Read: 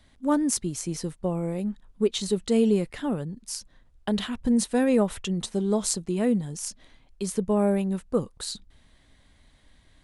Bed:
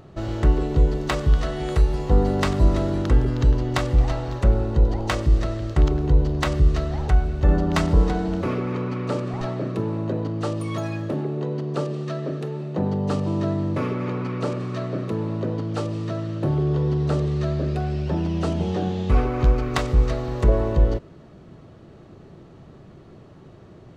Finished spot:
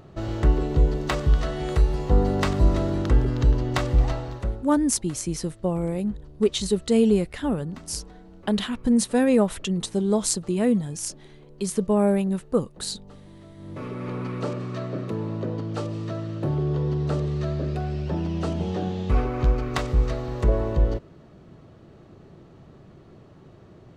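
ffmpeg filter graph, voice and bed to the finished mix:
-filter_complex "[0:a]adelay=4400,volume=1.33[s0];[1:a]volume=8.91,afade=t=out:st=4.07:d=0.6:silence=0.0794328,afade=t=in:st=13.55:d=0.67:silence=0.0944061[s1];[s0][s1]amix=inputs=2:normalize=0"

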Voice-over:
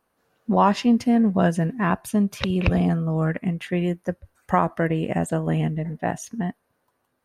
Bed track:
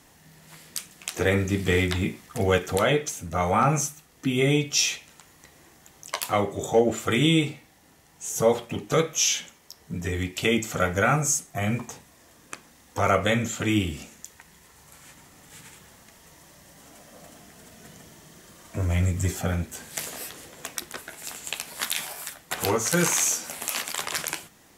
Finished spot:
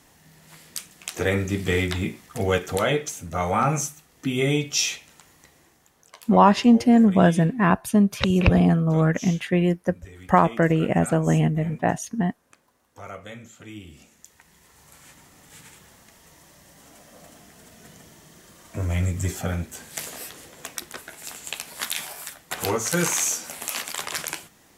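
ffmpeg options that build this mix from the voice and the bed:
-filter_complex "[0:a]adelay=5800,volume=1.41[s0];[1:a]volume=6.31,afade=t=out:st=5.31:d=0.81:silence=0.149624,afade=t=in:st=13.82:d=1.02:silence=0.149624[s1];[s0][s1]amix=inputs=2:normalize=0"

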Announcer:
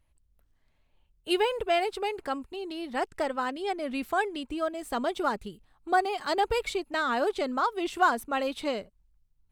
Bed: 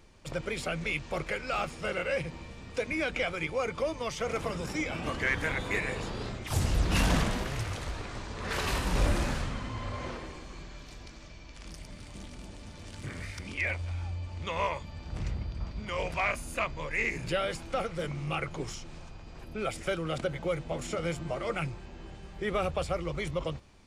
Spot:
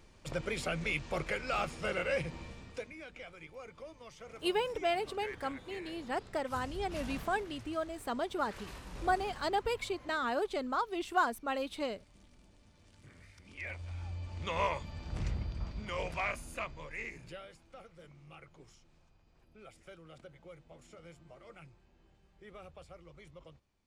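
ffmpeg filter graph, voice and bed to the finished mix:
-filter_complex "[0:a]adelay=3150,volume=0.501[s0];[1:a]volume=5.01,afade=t=out:st=2.48:d=0.45:silence=0.16788,afade=t=in:st=13.42:d=1.16:silence=0.158489,afade=t=out:st=15.34:d=2.16:silence=0.105925[s1];[s0][s1]amix=inputs=2:normalize=0"

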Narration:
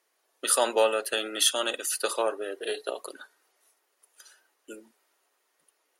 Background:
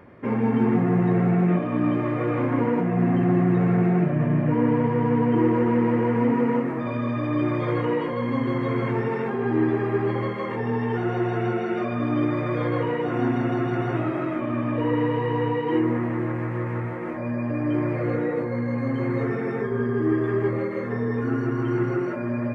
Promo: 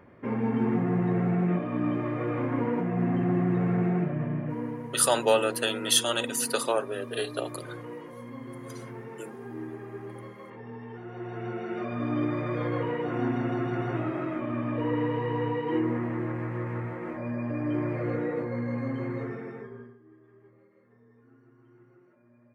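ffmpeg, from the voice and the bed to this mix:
-filter_complex "[0:a]adelay=4500,volume=1.06[s0];[1:a]volume=2,afade=t=out:st=3.9:d=0.93:silence=0.281838,afade=t=in:st=11.08:d=1.01:silence=0.266073,afade=t=out:st=18.75:d=1.23:silence=0.0354813[s1];[s0][s1]amix=inputs=2:normalize=0"

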